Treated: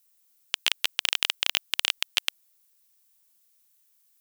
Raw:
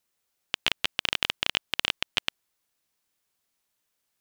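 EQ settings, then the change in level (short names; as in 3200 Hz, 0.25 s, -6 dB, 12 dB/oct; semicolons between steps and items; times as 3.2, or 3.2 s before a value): RIAA curve recording; -3.0 dB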